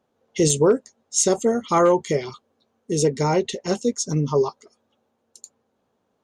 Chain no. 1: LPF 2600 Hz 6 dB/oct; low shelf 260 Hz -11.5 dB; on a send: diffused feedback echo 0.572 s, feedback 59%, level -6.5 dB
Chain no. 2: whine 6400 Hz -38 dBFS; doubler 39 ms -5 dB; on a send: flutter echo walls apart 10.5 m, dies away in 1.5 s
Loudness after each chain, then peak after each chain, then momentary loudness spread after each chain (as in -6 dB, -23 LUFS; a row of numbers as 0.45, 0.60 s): -25.0, -17.0 LUFS; -9.0, -2.5 dBFS; 15, 13 LU